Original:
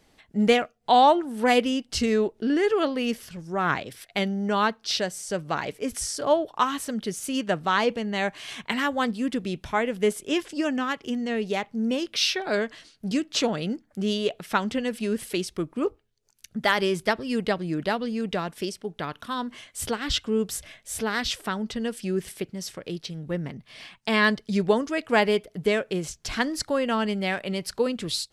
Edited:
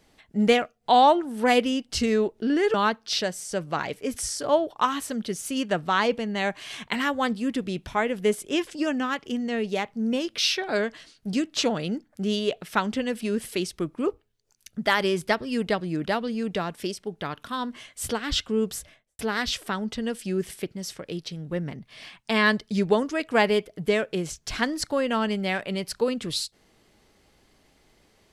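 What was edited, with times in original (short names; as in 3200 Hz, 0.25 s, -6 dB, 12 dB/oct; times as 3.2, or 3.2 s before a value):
2.74–4.52 cut
20.46–20.97 studio fade out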